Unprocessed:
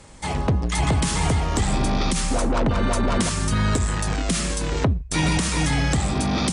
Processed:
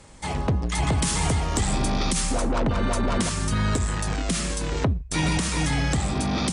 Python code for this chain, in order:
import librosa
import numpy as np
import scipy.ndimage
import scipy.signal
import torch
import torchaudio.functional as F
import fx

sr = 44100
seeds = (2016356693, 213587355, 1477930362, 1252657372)

y = fx.high_shelf(x, sr, hz=5800.0, db=6.0, at=(0.98, 2.32))
y = F.gain(torch.from_numpy(y), -2.5).numpy()